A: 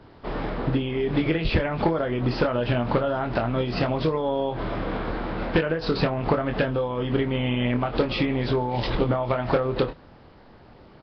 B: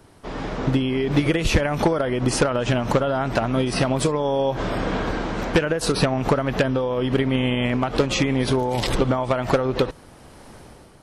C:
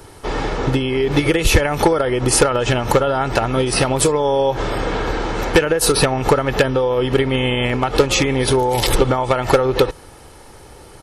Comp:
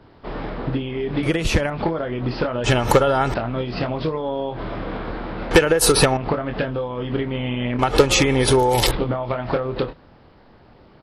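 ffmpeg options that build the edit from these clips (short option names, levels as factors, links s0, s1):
-filter_complex "[2:a]asplit=3[s0][s1][s2];[0:a]asplit=5[s3][s4][s5][s6][s7];[s3]atrim=end=1.232[s8];[1:a]atrim=start=1.228:end=1.702[s9];[s4]atrim=start=1.698:end=2.642[s10];[s0]atrim=start=2.638:end=3.342[s11];[s5]atrim=start=3.338:end=5.512[s12];[s1]atrim=start=5.508:end=6.172[s13];[s6]atrim=start=6.168:end=7.792[s14];[s2]atrim=start=7.788:end=8.912[s15];[s7]atrim=start=8.908[s16];[s8][s9]acrossfade=d=0.004:c1=hsin:c2=hsin[s17];[s17][s10]acrossfade=d=0.004:c1=hsin:c2=hsin[s18];[s18][s11]acrossfade=d=0.004:c1=hsin:c2=hsin[s19];[s19][s12]acrossfade=d=0.004:c1=hsin:c2=hsin[s20];[s20][s13]acrossfade=d=0.004:c1=hsin:c2=hsin[s21];[s21][s14]acrossfade=d=0.004:c1=hsin:c2=hsin[s22];[s22][s15]acrossfade=d=0.004:c1=hsin:c2=hsin[s23];[s23][s16]acrossfade=d=0.004:c1=hsin:c2=hsin"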